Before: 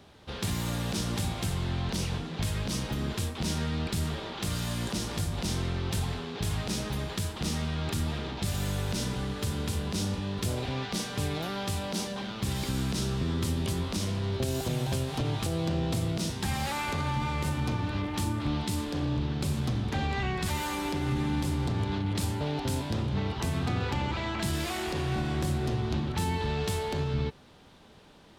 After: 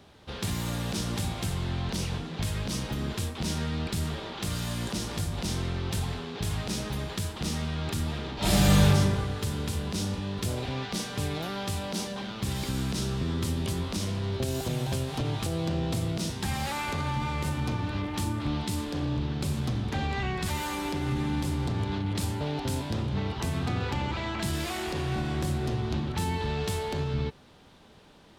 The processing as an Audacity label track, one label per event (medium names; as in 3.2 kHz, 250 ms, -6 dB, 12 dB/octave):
8.350000	8.860000	reverb throw, RT60 1.5 s, DRR -11.5 dB